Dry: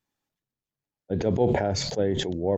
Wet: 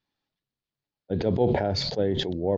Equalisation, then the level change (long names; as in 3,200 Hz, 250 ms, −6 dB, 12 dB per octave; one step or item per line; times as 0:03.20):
dynamic equaliser 2,300 Hz, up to −3 dB, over −39 dBFS, Q 0.85
low-pass with resonance 4,400 Hz, resonance Q 2.4
high-frequency loss of the air 89 metres
0.0 dB